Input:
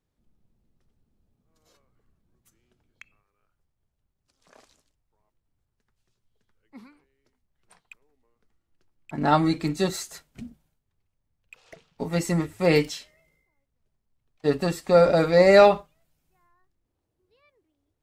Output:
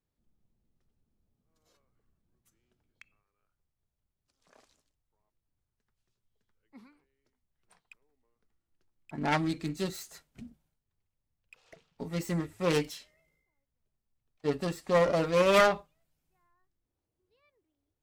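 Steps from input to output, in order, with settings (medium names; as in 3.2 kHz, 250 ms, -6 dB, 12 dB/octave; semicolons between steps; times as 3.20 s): self-modulated delay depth 0.34 ms; 9.37–12.21 s: dynamic bell 840 Hz, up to -5 dB, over -39 dBFS, Q 0.81; trim -7 dB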